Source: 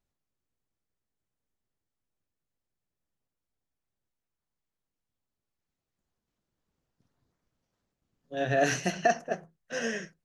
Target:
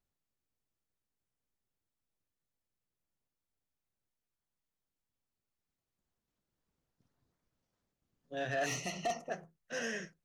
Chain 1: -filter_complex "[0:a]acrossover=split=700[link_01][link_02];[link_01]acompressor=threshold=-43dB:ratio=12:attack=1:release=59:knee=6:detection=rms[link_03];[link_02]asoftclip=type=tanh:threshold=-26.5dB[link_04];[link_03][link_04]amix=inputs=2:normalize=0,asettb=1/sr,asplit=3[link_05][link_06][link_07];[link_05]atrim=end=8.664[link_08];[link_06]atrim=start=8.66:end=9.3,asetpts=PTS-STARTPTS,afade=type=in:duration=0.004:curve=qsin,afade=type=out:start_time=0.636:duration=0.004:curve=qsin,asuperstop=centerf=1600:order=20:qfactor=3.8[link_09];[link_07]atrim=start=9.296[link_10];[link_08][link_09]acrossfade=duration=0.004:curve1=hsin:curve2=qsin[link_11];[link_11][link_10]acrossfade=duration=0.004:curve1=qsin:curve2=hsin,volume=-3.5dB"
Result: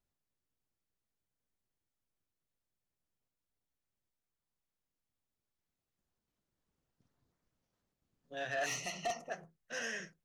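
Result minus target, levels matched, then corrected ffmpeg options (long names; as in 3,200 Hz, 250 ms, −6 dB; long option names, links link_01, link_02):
downward compressor: peak gain reduction +9 dB
-filter_complex "[0:a]acrossover=split=700[link_01][link_02];[link_01]acompressor=threshold=-33dB:ratio=12:attack=1:release=59:knee=6:detection=rms[link_03];[link_02]asoftclip=type=tanh:threshold=-26.5dB[link_04];[link_03][link_04]amix=inputs=2:normalize=0,asettb=1/sr,asplit=3[link_05][link_06][link_07];[link_05]atrim=end=8.664[link_08];[link_06]atrim=start=8.66:end=9.3,asetpts=PTS-STARTPTS,afade=type=in:duration=0.004:curve=qsin,afade=type=out:start_time=0.636:duration=0.004:curve=qsin,asuperstop=centerf=1600:order=20:qfactor=3.8[link_09];[link_07]atrim=start=9.296[link_10];[link_08][link_09]acrossfade=duration=0.004:curve1=hsin:curve2=qsin[link_11];[link_11][link_10]acrossfade=duration=0.004:curve1=qsin:curve2=hsin,volume=-3.5dB"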